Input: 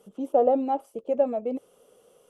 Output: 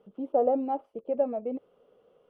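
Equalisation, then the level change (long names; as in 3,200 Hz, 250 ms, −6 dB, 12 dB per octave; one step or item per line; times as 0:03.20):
high-frequency loss of the air 380 metres
−2.5 dB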